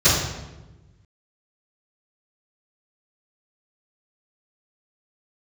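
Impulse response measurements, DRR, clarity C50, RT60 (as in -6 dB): -19.0 dB, 1.0 dB, 1.1 s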